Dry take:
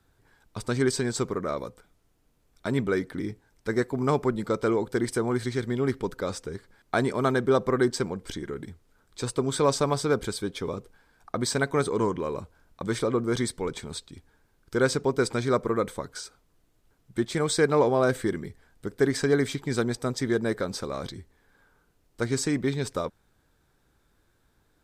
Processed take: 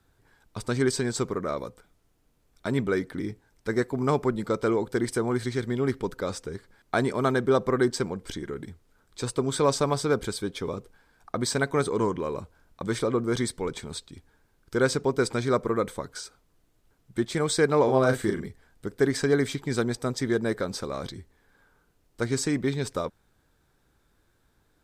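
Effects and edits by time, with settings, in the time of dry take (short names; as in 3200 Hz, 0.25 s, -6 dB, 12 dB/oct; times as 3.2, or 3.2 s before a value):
17.84–18.47 doubler 38 ms -5 dB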